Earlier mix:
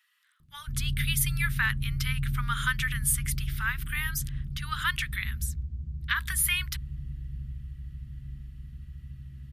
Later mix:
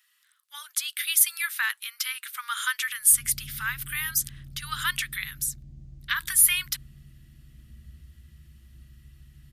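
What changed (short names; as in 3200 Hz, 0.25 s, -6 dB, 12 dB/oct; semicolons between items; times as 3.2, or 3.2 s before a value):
background: entry +2.45 s; master: add tone controls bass -15 dB, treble +9 dB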